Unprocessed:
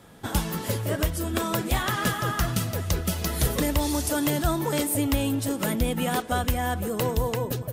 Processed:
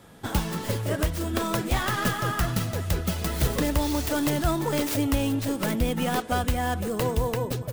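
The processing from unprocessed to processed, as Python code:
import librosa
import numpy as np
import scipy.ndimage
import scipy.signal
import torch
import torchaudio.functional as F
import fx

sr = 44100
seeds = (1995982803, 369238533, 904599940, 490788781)

y = fx.tracing_dist(x, sr, depth_ms=0.32)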